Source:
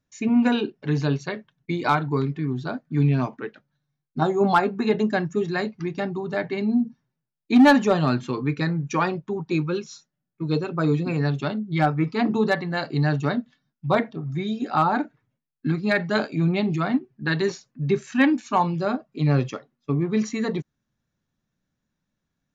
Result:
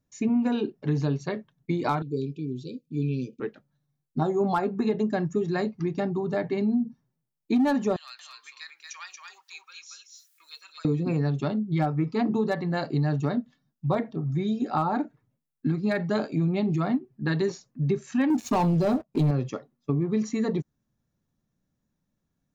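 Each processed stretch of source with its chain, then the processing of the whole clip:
2.02–3.40 s: brick-wall FIR band-stop 540–2300 Hz + bass shelf 330 Hz -11.5 dB
7.96–10.85 s: Bessel high-pass 2.7 kHz, order 4 + upward compressor, threshold -42 dBFS + delay 231 ms -4 dB
18.30–19.31 s: peaking EQ 1.4 kHz -6.5 dB 0.98 oct + waveshaping leveller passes 3
whole clip: peaking EQ 2.6 kHz -8 dB 2.5 oct; band-stop 1.5 kHz, Q 19; compression 4:1, threshold -24 dBFS; trim +2 dB

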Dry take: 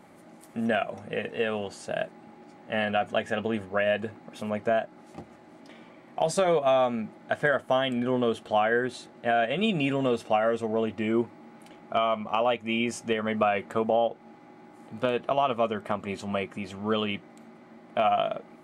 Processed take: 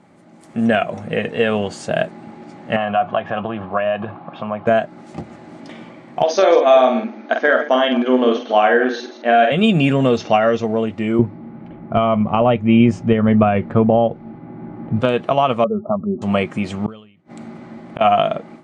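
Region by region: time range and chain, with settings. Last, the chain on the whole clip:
2.76–4.67 s: compression 2.5:1, threshold -31 dBFS + cabinet simulation 120–3200 Hz, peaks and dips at 240 Hz -8 dB, 440 Hz -8 dB, 720 Hz +7 dB, 1.1 kHz +10 dB, 2 kHz -9 dB
6.23–9.52 s: chunks repeated in reverse 109 ms, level -11.5 dB + brick-wall FIR band-pass 220–6600 Hz + doubling 47 ms -5 dB
10.17–10.65 s: steep low-pass 6.6 kHz 96 dB/octave + upward compressor, threshold -37 dBFS + treble shelf 4.5 kHz +9 dB
11.19–15.01 s: RIAA curve playback + level-controlled noise filter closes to 2.3 kHz, open at -17 dBFS
15.64–16.22 s: spectral contrast enhancement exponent 2.1 + brick-wall FIR low-pass 1.4 kHz
16.86–18.01 s: bass shelf 90 Hz +10.5 dB + inverted gate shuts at -27 dBFS, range -39 dB + decay stretcher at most 94 dB/s
whole clip: low-pass 8.8 kHz 24 dB/octave; peaking EQ 140 Hz +6 dB 1.5 oct; level rider

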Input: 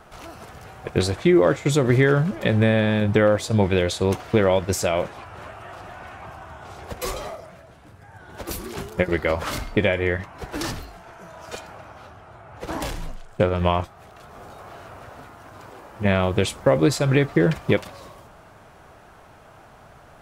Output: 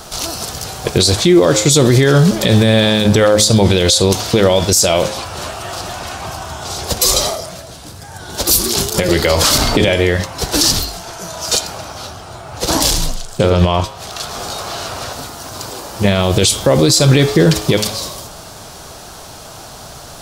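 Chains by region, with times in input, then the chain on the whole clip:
8.94–9.88 s: hum notches 60/120/180/240/300/360/420/480 Hz + three bands compressed up and down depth 100%
13.50–15.13 s: low-pass 4 kHz 6 dB/octave + tape noise reduction on one side only encoder only
whole clip: resonant high shelf 3.1 kHz +13 dB, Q 1.5; de-hum 106.2 Hz, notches 37; loudness maximiser +14.5 dB; trim -1 dB

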